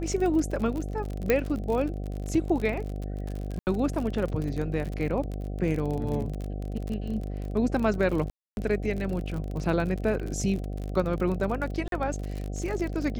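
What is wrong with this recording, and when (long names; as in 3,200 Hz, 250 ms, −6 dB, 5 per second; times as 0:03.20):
mains buzz 50 Hz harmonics 15 −33 dBFS
surface crackle 43 per second −31 dBFS
0:01.30: click −10 dBFS
0:03.59–0:03.67: drop-out 79 ms
0:08.30–0:08.57: drop-out 271 ms
0:11.88–0:11.92: drop-out 42 ms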